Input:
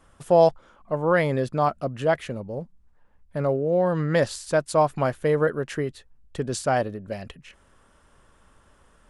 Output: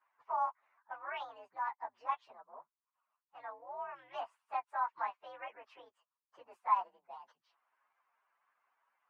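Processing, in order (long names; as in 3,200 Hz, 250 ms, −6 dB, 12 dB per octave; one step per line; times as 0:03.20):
partials spread apart or drawn together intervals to 125%
harmonic and percussive parts rebalanced harmonic −10 dB
four-pole ladder band-pass 1,100 Hz, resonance 70%
level +2 dB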